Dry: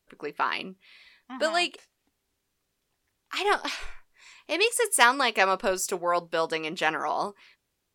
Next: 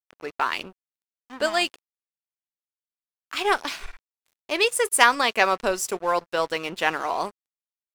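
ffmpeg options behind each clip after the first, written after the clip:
-af "aeval=exprs='sgn(val(0))*max(abs(val(0))-0.0075,0)':c=same,volume=1.41"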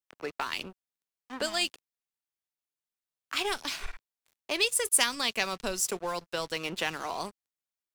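-filter_complex "[0:a]acrossover=split=220|3000[s0][s1][s2];[s1]acompressor=threshold=0.0251:ratio=6[s3];[s0][s3][s2]amix=inputs=3:normalize=0"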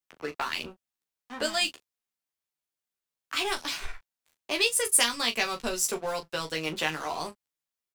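-af "aecho=1:1:13|38:0.668|0.282"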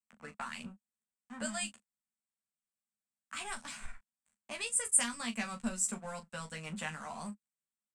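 -af "firequalizer=gain_entry='entry(150,0);entry(210,15);entry(320,-17);entry(550,-5);entry(1500,-1);entry(3600,-10);entry(5700,-9);entry(8100,8);entry(13000,-19)':delay=0.05:min_phase=1,volume=0.447"

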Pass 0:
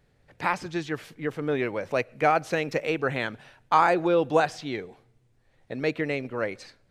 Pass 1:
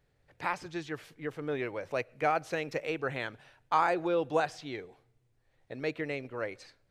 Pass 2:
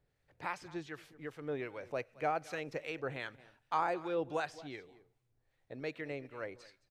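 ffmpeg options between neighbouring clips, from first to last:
-af "equalizer=f=210:w=2.8:g=-6.5,volume=0.473"
-filter_complex "[0:a]aecho=1:1:220:0.106,acrossover=split=1100[s0][s1];[s0]aeval=exprs='val(0)*(1-0.5/2+0.5/2*cos(2*PI*2.6*n/s))':c=same[s2];[s1]aeval=exprs='val(0)*(1-0.5/2-0.5/2*cos(2*PI*2.6*n/s))':c=same[s3];[s2][s3]amix=inputs=2:normalize=0,volume=0.631"

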